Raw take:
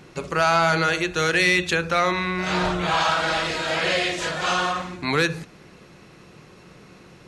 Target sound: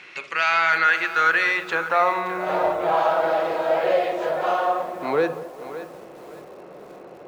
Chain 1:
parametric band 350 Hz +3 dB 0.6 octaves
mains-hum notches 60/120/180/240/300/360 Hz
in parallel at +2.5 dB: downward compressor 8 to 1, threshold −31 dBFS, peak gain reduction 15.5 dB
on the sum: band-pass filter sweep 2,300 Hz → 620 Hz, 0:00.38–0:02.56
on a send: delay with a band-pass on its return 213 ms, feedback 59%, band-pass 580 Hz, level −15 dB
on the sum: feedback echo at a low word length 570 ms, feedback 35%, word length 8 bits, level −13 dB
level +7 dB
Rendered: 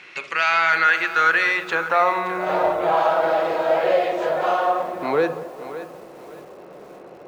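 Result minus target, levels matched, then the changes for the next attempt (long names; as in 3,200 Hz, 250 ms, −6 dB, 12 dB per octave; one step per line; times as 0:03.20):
downward compressor: peak gain reduction −9 dB
change: downward compressor 8 to 1, threshold −41.5 dBFS, peak gain reduction 24.5 dB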